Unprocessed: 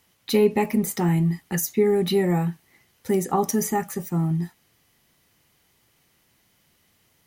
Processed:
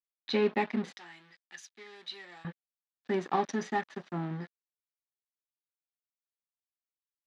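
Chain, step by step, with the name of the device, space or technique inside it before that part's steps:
blown loudspeaker (dead-zone distortion −35.5 dBFS; loudspeaker in its box 250–4,500 Hz, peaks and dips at 450 Hz −5 dB, 1,700 Hz +6 dB, 3,700 Hz +4 dB)
0:00.97–0:02.45: first difference
level −4 dB

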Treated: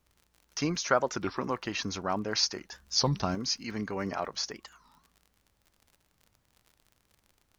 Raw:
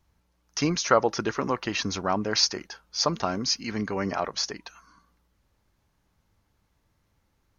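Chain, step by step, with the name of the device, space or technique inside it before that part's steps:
0:02.72–0:03.35: bass and treble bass +10 dB, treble +6 dB
warped LP (wow of a warped record 33 1/3 rpm, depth 250 cents; surface crackle 61 per second −41 dBFS; pink noise bed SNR 43 dB)
level −5 dB

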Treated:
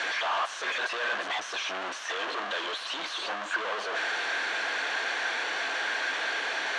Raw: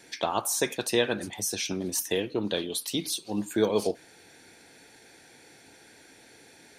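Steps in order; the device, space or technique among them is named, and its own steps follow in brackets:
home computer beeper (sign of each sample alone; loudspeaker in its box 620–5,200 Hz, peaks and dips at 650 Hz +6 dB, 1,100 Hz +8 dB, 1,600 Hz +9 dB, 3,000 Hz +4 dB, 5,000 Hz −7 dB)

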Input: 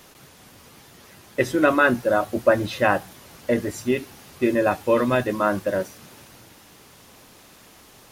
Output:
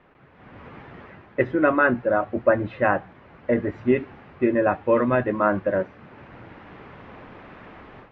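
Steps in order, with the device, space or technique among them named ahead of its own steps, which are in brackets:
action camera in a waterproof case (low-pass filter 2,200 Hz 24 dB per octave; automatic gain control gain up to 14 dB; level −5 dB; AAC 64 kbit/s 32,000 Hz)

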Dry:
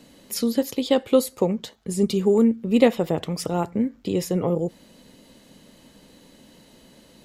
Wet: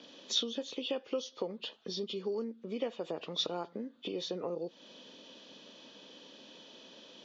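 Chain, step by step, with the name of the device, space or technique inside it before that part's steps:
hearing aid with frequency lowering (hearing-aid frequency compression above 1,800 Hz 1.5 to 1; downward compressor 4 to 1, threshold −32 dBFS, peak gain reduction 18 dB; loudspeaker in its box 360–5,900 Hz, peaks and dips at 780 Hz −4 dB, 2,100 Hz −8 dB, 3,500 Hz +10 dB)

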